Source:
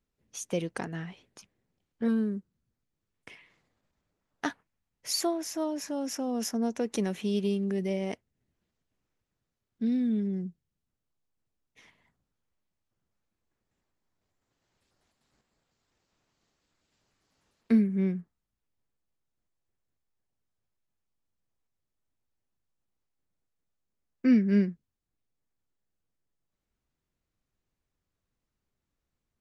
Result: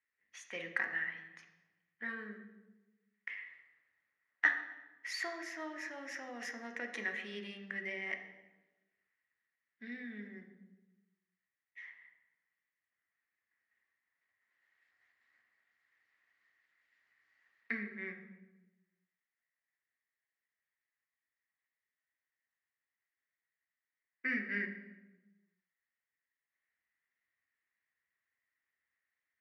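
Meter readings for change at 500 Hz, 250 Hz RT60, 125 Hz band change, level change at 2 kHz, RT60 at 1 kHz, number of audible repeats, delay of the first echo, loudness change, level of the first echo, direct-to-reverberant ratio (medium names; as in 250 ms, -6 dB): -15.0 dB, 1.4 s, under -20 dB, +9.0 dB, 1.0 s, no echo, no echo, -9.5 dB, no echo, 4.0 dB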